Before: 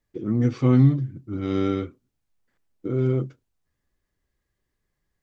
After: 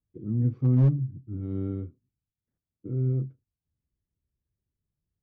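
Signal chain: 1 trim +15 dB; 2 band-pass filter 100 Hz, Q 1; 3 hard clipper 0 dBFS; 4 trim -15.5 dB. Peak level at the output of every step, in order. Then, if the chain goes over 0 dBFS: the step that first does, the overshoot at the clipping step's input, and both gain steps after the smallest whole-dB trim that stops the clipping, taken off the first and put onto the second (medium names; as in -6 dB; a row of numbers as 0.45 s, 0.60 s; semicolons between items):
+8.0 dBFS, +5.0 dBFS, 0.0 dBFS, -15.5 dBFS; step 1, 5.0 dB; step 1 +10 dB, step 4 -10.5 dB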